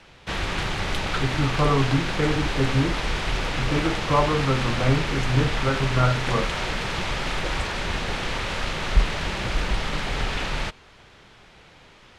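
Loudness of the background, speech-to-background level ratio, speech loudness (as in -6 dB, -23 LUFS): -27.0 LUFS, 2.0 dB, -25.0 LUFS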